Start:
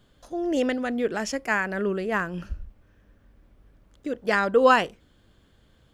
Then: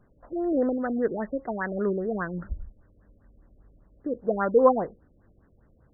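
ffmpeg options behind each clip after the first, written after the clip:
ffmpeg -i in.wav -af "afftfilt=real='re*lt(b*sr/1024,610*pow(2100/610,0.5+0.5*sin(2*PI*5*pts/sr)))':imag='im*lt(b*sr/1024,610*pow(2100/610,0.5+0.5*sin(2*PI*5*pts/sr)))':win_size=1024:overlap=0.75" out.wav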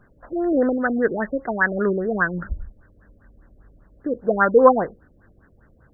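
ffmpeg -i in.wav -af "equalizer=frequency=1600:width_type=o:width=0.66:gain=10,volume=5dB" out.wav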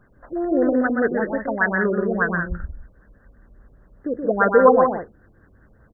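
ffmpeg -i in.wav -af "aecho=1:1:125.4|177.8:0.562|0.447,volume=-1dB" out.wav

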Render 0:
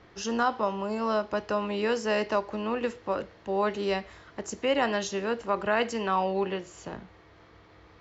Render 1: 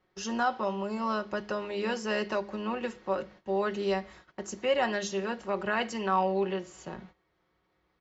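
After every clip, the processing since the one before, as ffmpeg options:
ffmpeg -i in.wav -af "bandreject=frequency=51.31:width_type=h:width=4,bandreject=frequency=102.62:width_type=h:width=4,bandreject=frequency=153.93:width_type=h:width=4,bandreject=frequency=205.24:width_type=h:width=4,agate=range=-16dB:threshold=-49dB:ratio=16:detection=peak,aecho=1:1:5.4:0.59,volume=-3.5dB" out.wav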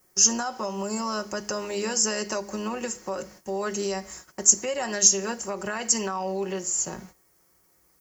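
ffmpeg -i in.wav -af "alimiter=level_in=1dB:limit=-24dB:level=0:latency=1:release=142,volume=-1dB,aexciter=amount=15.9:drive=6.4:freq=5600,volume=4dB" out.wav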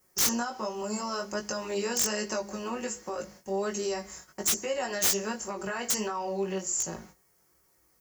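ffmpeg -i in.wav -af "aeval=exprs='(mod(5.31*val(0)+1,2)-1)/5.31':channel_layout=same,flanger=delay=18:depth=3.1:speed=1.3" out.wav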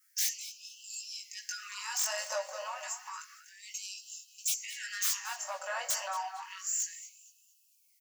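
ffmpeg -i in.wav -filter_complex "[0:a]aeval=exprs='(tanh(20*val(0)+0.15)-tanh(0.15))/20':channel_layout=same,asplit=2[link_01][link_02];[link_02]adelay=228,lowpass=frequency=4400:poles=1,volume=-10.5dB,asplit=2[link_03][link_04];[link_04]adelay=228,lowpass=frequency=4400:poles=1,volume=0.54,asplit=2[link_05][link_06];[link_06]adelay=228,lowpass=frequency=4400:poles=1,volume=0.54,asplit=2[link_07][link_08];[link_08]adelay=228,lowpass=frequency=4400:poles=1,volume=0.54,asplit=2[link_09][link_10];[link_10]adelay=228,lowpass=frequency=4400:poles=1,volume=0.54,asplit=2[link_11][link_12];[link_12]adelay=228,lowpass=frequency=4400:poles=1,volume=0.54[link_13];[link_01][link_03][link_05][link_07][link_09][link_11][link_13]amix=inputs=7:normalize=0,afftfilt=real='re*gte(b*sr/1024,490*pow(2600/490,0.5+0.5*sin(2*PI*0.3*pts/sr)))':imag='im*gte(b*sr/1024,490*pow(2600/490,0.5+0.5*sin(2*PI*0.3*pts/sr)))':win_size=1024:overlap=0.75" out.wav

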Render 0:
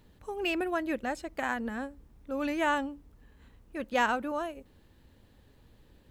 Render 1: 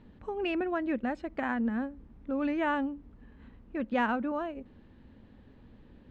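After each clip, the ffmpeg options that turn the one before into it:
ffmpeg -i in.wav -filter_complex "[0:a]lowpass=2600,equalizer=frequency=230:width=2.1:gain=8.5,asplit=2[link_01][link_02];[link_02]acompressor=threshold=-36dB:ratio=6,volume=3dB[link_03];[link_01][link_03]amix=inputs=2:normalize=0,volume=-5dB" out.wav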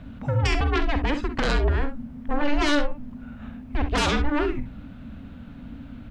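ffmpeg -i in.wav -filter_complex "[0:a]aeval=exprs='0.133*sin(PI/2*3.98*val(0)/0.133)':channel_layout=same,afreqshift=-290,asplit=2[link_01][link_02];[link_02]aecho=0:1:48|65:0.282|0.266[link_03];[link_01][link_03]amix=inputs=2:normalize=0,volume=-1.5dB" out.wav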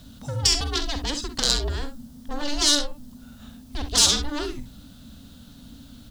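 ffmpeg -i in.wav -af "aexciter=amount=9.6:drive=8.5:freq=3600,volume=-6dB" out.wav

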